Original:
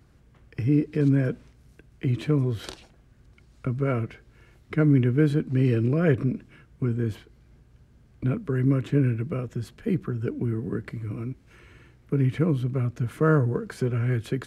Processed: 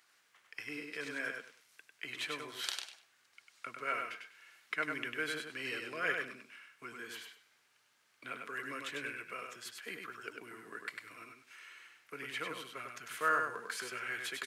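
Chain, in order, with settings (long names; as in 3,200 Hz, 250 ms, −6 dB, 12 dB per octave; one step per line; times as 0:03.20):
high-pass filter 1,500 Hz 12 dB per octave
repeating echo 99 ms, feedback 22%, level −4.5 dB
level +2.5 dB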